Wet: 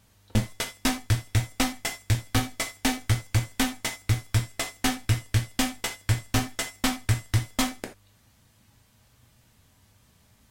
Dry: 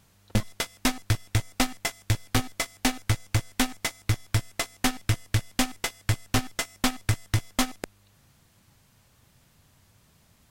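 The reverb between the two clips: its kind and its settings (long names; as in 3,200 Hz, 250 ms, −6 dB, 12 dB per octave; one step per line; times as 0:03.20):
reverb whose tail is shaped and stops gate 110 ms falling, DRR 3 dB
level −2 dB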